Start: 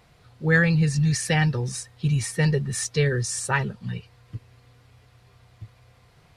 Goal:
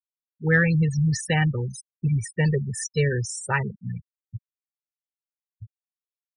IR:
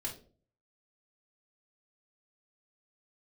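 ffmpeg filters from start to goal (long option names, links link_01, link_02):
-af "afftfilt=real='re*gte(hypot(re,im),0.0631)':imag='im*gte(hypot(re,im),0.0631)':win_size=1024:overlap=0.75,aeval=exprs='0.447*(cos(1*acos(clip(val(0)/0.447,-1,1)))-cos(1*PI/2))+0.00794*(cos(3*acos(clip(val(0)/0.447,-1,1)))-cos(3*PI/2))':channel_layout=same"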